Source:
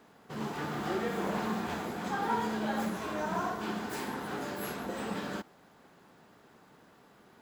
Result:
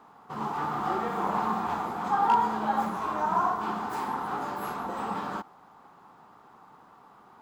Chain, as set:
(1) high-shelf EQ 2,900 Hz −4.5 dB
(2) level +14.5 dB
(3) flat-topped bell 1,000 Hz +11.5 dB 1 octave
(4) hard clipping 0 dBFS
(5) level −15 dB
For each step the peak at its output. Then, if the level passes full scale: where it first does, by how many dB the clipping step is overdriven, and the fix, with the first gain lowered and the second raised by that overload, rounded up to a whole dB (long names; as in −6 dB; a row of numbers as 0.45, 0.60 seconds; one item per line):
−19.5, −5.0, +4.0, 0.0, −15.0 dBFS
step 3, 4.0 dB
step 2 +10.5 dB, step 5 −11 dB